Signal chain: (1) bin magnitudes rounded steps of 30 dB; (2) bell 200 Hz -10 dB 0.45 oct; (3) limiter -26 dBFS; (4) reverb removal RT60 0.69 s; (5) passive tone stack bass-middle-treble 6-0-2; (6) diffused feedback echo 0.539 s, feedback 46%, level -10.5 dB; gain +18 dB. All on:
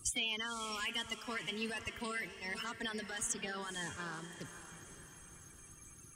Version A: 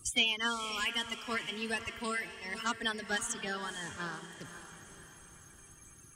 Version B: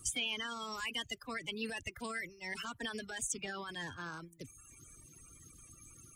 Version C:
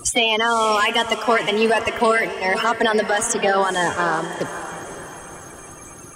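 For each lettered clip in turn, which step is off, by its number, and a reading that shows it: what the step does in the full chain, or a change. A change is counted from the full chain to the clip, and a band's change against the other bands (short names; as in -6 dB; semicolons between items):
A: 3, mean gain reduction 2.0 dB; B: 6, echo-to-direct -9.5 dB to none; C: 5, 500 Hz band +10.0 dB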